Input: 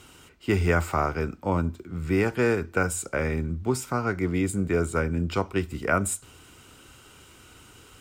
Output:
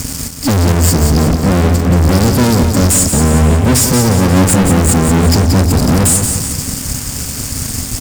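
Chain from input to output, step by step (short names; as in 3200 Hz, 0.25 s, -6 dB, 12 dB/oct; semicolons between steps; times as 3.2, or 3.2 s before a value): FFT band-reject 290–4300 Hz; fuzz box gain 49 dB, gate -56 dBFS; feedback echo 0.179 s, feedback 48%, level -6.5 dB; gain +3.5 dB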